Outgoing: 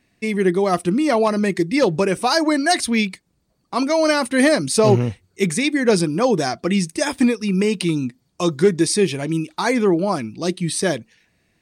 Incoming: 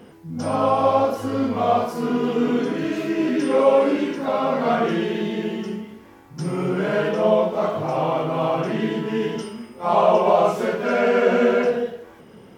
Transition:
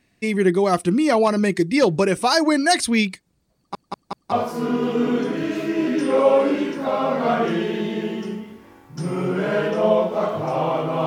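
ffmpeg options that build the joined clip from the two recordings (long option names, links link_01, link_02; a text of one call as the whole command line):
ffmpeg -i cue0.wav -i cue1.wav -filter_complex "[0:a]apad=whole_dur=11.06,atrim=end=11.06,asplit=4[link_01][link_02][link_03][link_04];[link_01]atrim=end=3.752[link_05];[link_02]atrim=start=3.558:end=3.752[link_06];[link_03]atrim=start=3.558:end=3.752[link_07];[link_04]atrim=start=3.558:end=3.752[link_08];[1:a]atrim=start=1.728:end=8.47[link_09];[link_05][link_06]acrossfade=duration=0.004:curve1=hsin:curve2=hsin[link_10];[link_10][link_07]acrossfade=duration=0.004:curve1=hsin:curve2=hsin[link_11];[link_11][link_08]acrossfade=duration=0.004:curve1=hsin:curve2=hsin[link_12];[link_12][link_09]acrossfade=duration=0.004:curve1=hsin:curve2=hsin" out.wav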